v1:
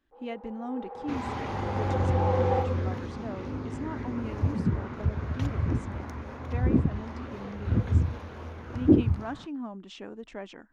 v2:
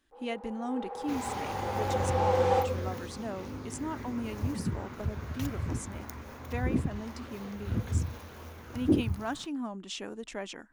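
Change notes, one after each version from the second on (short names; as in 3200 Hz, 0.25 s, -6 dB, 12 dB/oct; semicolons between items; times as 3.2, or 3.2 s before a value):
second sound -6.5 dB; master: remove tape spacing loss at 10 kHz 21 dB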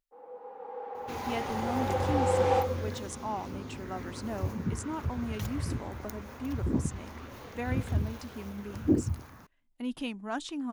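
speech: entry +1.05 s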